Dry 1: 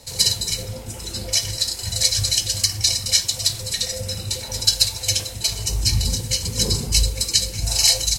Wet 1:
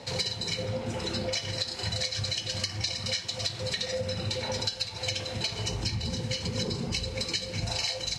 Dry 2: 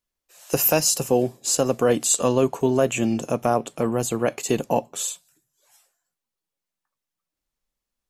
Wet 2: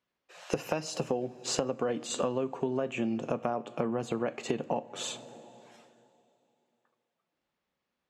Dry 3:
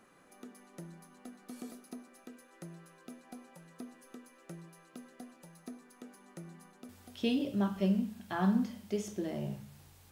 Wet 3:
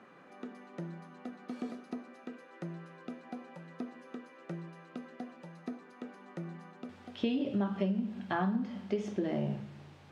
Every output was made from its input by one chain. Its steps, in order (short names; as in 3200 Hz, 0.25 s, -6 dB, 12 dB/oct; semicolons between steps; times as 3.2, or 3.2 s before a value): BPF 130–3000 Hz; two-slope reverb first 0.35 s, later 2.9 s, from -18 dB, DRR 13.5 dB; compressor 12:1, threshold -34 dBFS; gain +6.5 dB